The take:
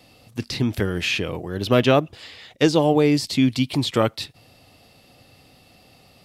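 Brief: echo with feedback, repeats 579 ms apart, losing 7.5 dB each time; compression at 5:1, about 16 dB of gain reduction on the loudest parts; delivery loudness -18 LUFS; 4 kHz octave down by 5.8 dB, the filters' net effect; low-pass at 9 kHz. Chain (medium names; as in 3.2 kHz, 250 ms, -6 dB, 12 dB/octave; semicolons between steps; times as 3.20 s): low-pass 9 kHz; peaking EQ 4 kHz -7.5 dB; compression 5:1, threshold -31 dBFS; feedback delay 579 ms, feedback 42%, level -7.5 dB; trim +16.5 dB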